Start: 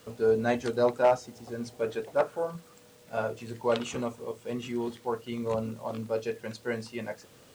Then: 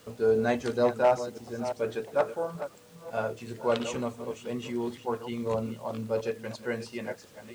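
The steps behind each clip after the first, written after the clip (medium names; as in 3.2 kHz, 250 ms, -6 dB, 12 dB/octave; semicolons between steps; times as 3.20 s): chunks repeated in reverse 345 ms, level -11 dB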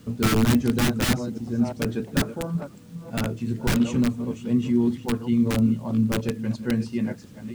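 integer overflow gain 20.5 dB; resonant low shelf 350 Hz +13 dB, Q 1.5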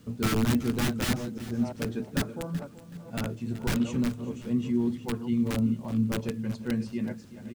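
feedback delay 377 ms, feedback 33%, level -16 dB; trim -5.5 dB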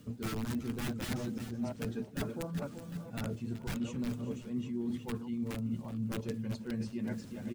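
coarse spectral quantiser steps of 15 dB; reverse; compression 6:1, threshold -37 dBFS, peak gain reduction 15.5 dB; reverse; trim +3 dB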